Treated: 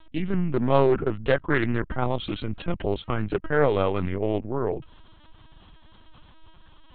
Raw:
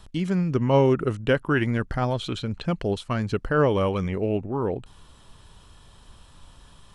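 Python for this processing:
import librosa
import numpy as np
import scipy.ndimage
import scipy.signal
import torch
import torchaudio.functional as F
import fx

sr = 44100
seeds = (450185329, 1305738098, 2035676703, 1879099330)

y = fx.lpc_vocoder(x, sr, seeds[0], excitation='pitch_kept', order=10)
y = fx.doppler_dist(y, sr, depth_ms=0.31)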